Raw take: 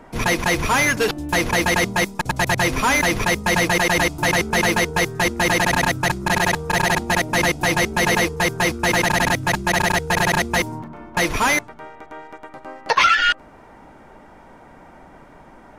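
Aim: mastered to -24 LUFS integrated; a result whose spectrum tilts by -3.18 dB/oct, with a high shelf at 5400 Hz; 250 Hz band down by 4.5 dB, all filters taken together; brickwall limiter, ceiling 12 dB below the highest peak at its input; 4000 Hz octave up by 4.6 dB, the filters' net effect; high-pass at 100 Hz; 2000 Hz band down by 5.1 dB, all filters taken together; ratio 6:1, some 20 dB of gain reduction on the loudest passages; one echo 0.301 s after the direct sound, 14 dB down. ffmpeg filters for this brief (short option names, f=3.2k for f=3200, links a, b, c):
-af "highpass=100,equalizer=f=250:t=o:g=-7,equalizer=f=2k:t=o:g=-8,equalizer=f=4k:t=o:g=6,highshelf=f=5.4k:g=5.5,acompressor=threshold=-35dB:ratio=6,alimiter=level_in=3dB:limit=-24dB:level=0:latency=1,volume=-3dB,aecho=1:1:301:0.2,volume=13.5dB"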